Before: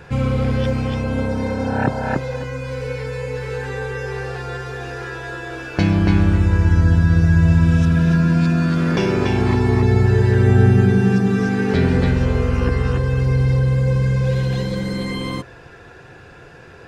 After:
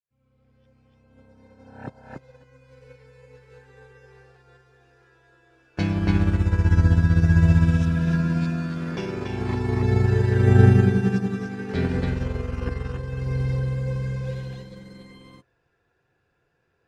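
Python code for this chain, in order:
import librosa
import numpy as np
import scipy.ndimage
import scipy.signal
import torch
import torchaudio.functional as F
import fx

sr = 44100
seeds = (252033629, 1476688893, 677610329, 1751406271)

y = fx.fade_in_head(x, sr, length_s=2.64)
y = fx.upward_expand(y, sr, threshold_db=-29.0, expansion=2.5)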